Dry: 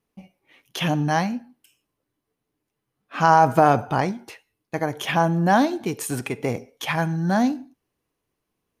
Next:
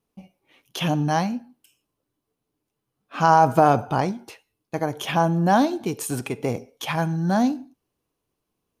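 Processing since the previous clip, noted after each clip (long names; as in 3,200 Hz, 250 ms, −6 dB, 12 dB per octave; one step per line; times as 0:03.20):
parametric band 1,900 Hz −6 dB 0.6 octaves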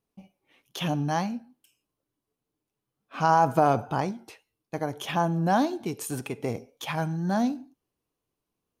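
tape wow and flutter 48 cents
level −5 dB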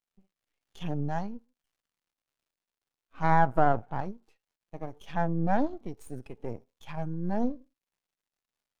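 surface crackle 440 per second −44 dBFS
half-wave rectification
every bin expanded away from the loudest bin 1.5 to 1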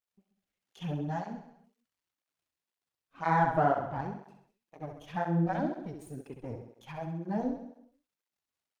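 repeating echo 66 ms, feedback 56%, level −7 dB
through-zero flanger with one copy inverted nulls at 2 Hz, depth 5.9 ms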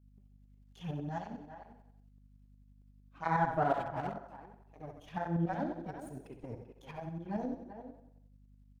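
far-end echo of a speakerphone 390 ms, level −9 dB
mains hum 50 Hz, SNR 21 dB
shaped tremolo saw up 11 Hz, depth 55%
level −2 dB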